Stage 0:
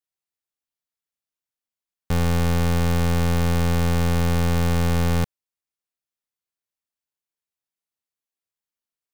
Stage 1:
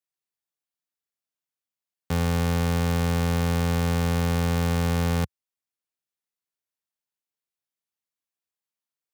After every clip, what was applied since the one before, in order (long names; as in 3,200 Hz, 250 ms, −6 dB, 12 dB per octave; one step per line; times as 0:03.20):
high-pass filter 76 Hz 24 dB per octave
level −2 dB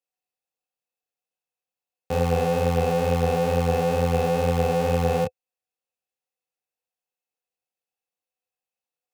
chorus effect 2.2 Hz, depth 6.6 ms
hollow resonant body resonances 510/740/2,600 Hz, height 16 dB, ringing for 50 ms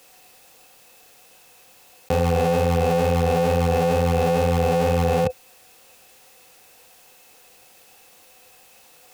envelope flattener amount 100%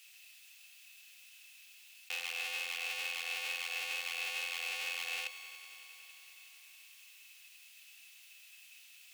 high-pass with resonance 2,600 Hz, resonance Q 2.5
echo machine with several playback heads 93 ms, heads all three, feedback 74%, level −19 dB
level −8 dB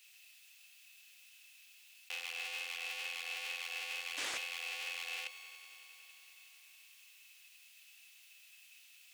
sound drawn into the spectrogram noise, 0:04.17–0:04.38, 240–8,500 Hz −39 dBFS
highs frequency-modulated by the lows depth 0.34 ms
level −3 dB